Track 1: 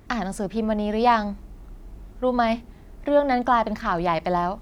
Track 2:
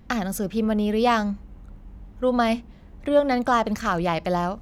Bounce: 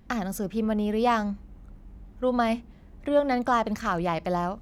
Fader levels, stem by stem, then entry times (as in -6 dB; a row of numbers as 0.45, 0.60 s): -16.0, -5.0 dB; 0.00, 0.00 s